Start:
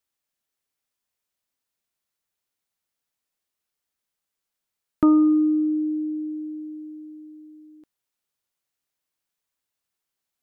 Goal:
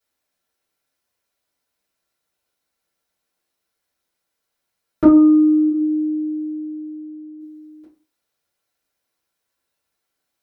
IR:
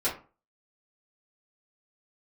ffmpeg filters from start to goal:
-filter_complex "[0:a]asplit=3[a][b][c];[a]afade=t=out:st=5.69:d=0.02[d];[b]lowpass=f=1.1k:w=0.5412,lowpass=f=1.1k:w=1.3066,afade=t=in:st=5.69:d=0.02,afade=t=out:st=7.39:d=0.02[e];[c]afade=t=in:st=7.39:d=0.02[f];[d][e][f]amix=inputs=3:normalize=0[g];[1:a]atrim=start_sample=2205[h];[g][h]afir=irnorm=-1:irlink=0"

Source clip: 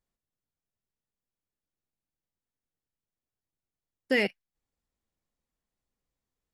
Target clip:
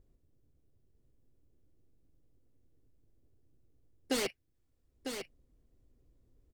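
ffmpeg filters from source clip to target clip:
-filter_complex "[0:a]equalizer=f=190:w=3.1:g=-14,bandreject=f=850:w=12,acrossover=split=420[a][b];[a]acompressor=mode=upward:threshold=-47dB:ratio=2.5[c];[b]aeval=exprs='0.0316*(abs(mod(val(0)/0.0316+3,4)-2)-1)':c=same[d];[c][d]amix=inputs=2:normalize=0,aecho=1:1:950:0.422"

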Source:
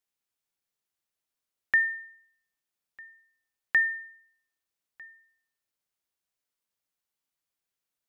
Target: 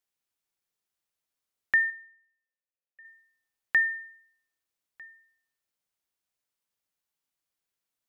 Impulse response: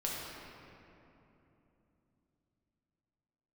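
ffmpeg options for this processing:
-filter_complex "[0:a]asettb=1/sr,asplit=3[a][b][c];[a]atrim=end=1.904[d];[b]atrim=start=1.9:end=3.05,asetpts=PTS-STARTPTS,afade=t=in:d=0.004:c=qsin,afade=t=out:st=1.146:d=0.004:c=qsin,asplit=3[e][f][g];[e]bandpass=f=530:t=q:w=8,volume=0dB[h];[f]bandpass=f=1.84k:t=q:w=8,volume=-6dB[i];[g]bandpass=f=2.48k:t=q:w=8,volume=-9dB[j];[h][i][j]amix=inputs=3:normalize=0[k];[c]atrim=start=3.046[l];[d][k]acrossfade=d=0.004:c1=hsin:c2=qsin[m];[m][l]acrossfade=d=0.004:c1=qsin:c2=hsin"

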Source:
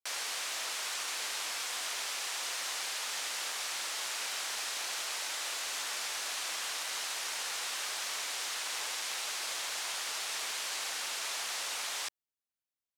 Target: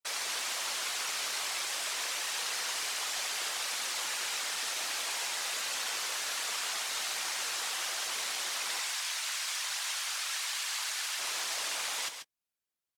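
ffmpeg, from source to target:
-filter_complex "[0:a]asettb=1/sr,asplit=3[a][b][c];[a]atrim=end=8.794[d];[b]atrim=start=8.79:end=11.19,asetpts=PTS-STARTPTS,afade=t=in:d=0.004:c=qsin,afade=t=out:st=2.396:d=0.004:c=qsin,highpass=970[e];[c]atrim=start=11.186[f];[d][e]acrossfade=d=0.004:c1=hsin:c2=qsin[g];[g][f]acrossfade=d=0.004:c1=qsin:c2=hsin,afftfilt=real='hypot(re,im)*cos(2*PI*random(0))':imag='hypot(re,im)*sin(2*PI*random(1))':win_size=512:overlap=0.75,asplit=2[h][i];[i]adelay=17,volume=-13.5dB[j];[h][j]amix=inputs=2:normalize=0,aecho=1:1:138:0.376,volume=7.5dB" -ar 48000 -c:a aac -b:a 160k

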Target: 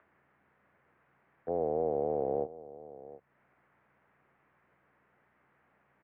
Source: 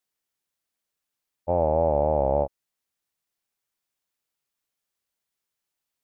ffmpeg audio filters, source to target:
-filter_complex "[0:a]highpass=160,acompressor=mode=upward:threshold=-26dB:ratio=2.5,aeval=exprs='val(0)+0.001*(sin(2*PI*60*n/s)+sin(2*PI*2*60*n/s)/2+sin(2*PI*3*60*n/s)/3+sin(2*PI*4*60*n/s)/4+sin(2*PI*5*60*n/s)/5)':c=same,asettb=1/sr,asplit=3[a][b][c];[a]atrim=end=1.534[d];[b]atrim=start=1.53:end=2.43,asetpts=PTS-STARTPTS,afade=t=in:d=0.004:c=qsin,afade=t=out:st=0.896:d=0.004:c=qsin,acrusher=bits=9:dc=4:mix=0:aa=0.000001[e];[c]atrim=start=2.426[f];[d][e]acrossfade=d=0.004:c1=hsin:c2=qsin[g];[g][f]acrossfade=d=0.004:c1=qsin:c2=hsin,asplit=2[h][i];[i]aecho=0:1:725:0.141[j];[h][j]amix=inputs=2:normalize=0,highpass=f=210:t=q:w=0.5412,highpass=f=210:t=q:w=1.307,lowpass=f=2.1k:t=q:w=0.5176,lowpass=f=2.1k:t=q:w=0.7071,lowpass=f=2.1k:t=q:w=1.932,afreqshift=-100,volume=-8.5dB"

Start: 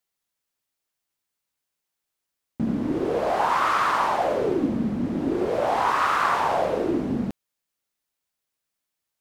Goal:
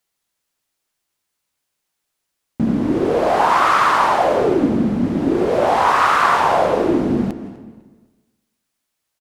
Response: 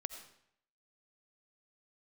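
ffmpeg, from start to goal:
-filter_complex "[0:a]asplit=2[a][b];[b]adelay=250,lowpass=f=4.5k:p=1,volume=-18.5dB,asplit=2[c][d];[d]adelay=250,lowpass=f=4.5k:p=1,volume=0.34,asplit=2[e][f];[f]adelay=250,lowpass=f=4.5k:p=1,volume=0.34[g];[a][c][e][g]amix=inputs=4:normalize=0,asplit=2[h][i];[1:a]atrim=start_sample=2205,asetrate=23814,aresample=44100[j];[i][j]afir=irnorm=-1:irlink=0,volume=-2.5dB[k];[h][k]amix=inputs=2:normalize=0,volume=2dB"

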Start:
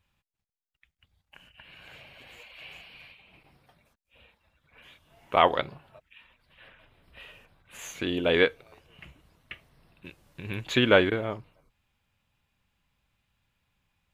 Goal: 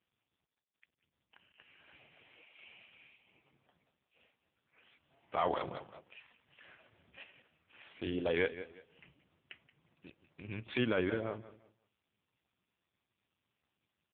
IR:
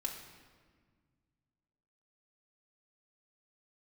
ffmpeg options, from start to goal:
-filter_complex "[0:a]asettb=1/sr,asplit=3[a][b][c];[a]atrim=end=5.384[d];[b]atrim=start=5.38:end=7.24,asetpts=PTS-STARTPTS,afade=t=in:d=0.004:c=qsin,afade=t=out:st=1.856:d=0.004:c=qsin,acontrast=72[e];[c]atrim=start=7.236[f];[d][e]acrossfade=d=0.004:c1=hsin:c2=qsin[g];[g][f]acrossfade=d=0.004:c1=qsin:c2=hsin,aecho=1:1:176|352|528:0.168|0.0453|0.0122,alimiter=limit=-13dB:level=0:latency=1:release=28,volume=-6.5dB" -ar 8000 -c:a libopencore_amrnb -b:a 4750

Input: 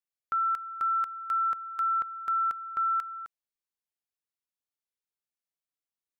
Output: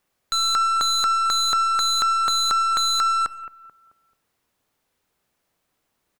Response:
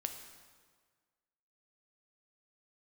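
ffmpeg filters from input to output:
-filter_complex "[0:a]aeval=exprs='0.0668*sin(PI/2*2.82*val(0)/0.0668)':c=same,highshelf=f=2.1k:g=-11.5,asplit=2[a][b];[b]adelay=218,lowpass=f=1.3k:p=1,volume=-15dB,asplit=2[c][d];[d]adelay=218,lowpass=f=1.3k:p=1,volume=0.45,asplit=2[e][f];[f]adelay=218,lowpass=f=1.3k:p=1,volume=0.45,asplit=2[g][h];[h]adelay=218,lowpass=f=1.3k:p=1,volume=0.45[i];[a][c][e][g][i]amix=inputs=5:normalize=0,aeval=exprs='0.0531*(cos(1*acos(clip(val(0)/0.0531,-1,1)))-cos(1*PI/2))+0.00422*(cos(5*acos(clip(val(0)/0.0531,-1,1)))-cos(5*PI/2))+0.00376*(cos(8*acos(clip(val(0)/0.0531,-1,1)))-cos(8*PI/2))':c=same,asplit=2[j][k];[1:a]atrim=start_sample=2205,afade=t=out:st=0.24:d=0.01,atrim=end_sample=11025[l];[k][l]afir=irnorm=-1:irlink=0,volume=-5dB[m];[j][m]amix=inputs=2:normalize=0,volume=8.5dB"

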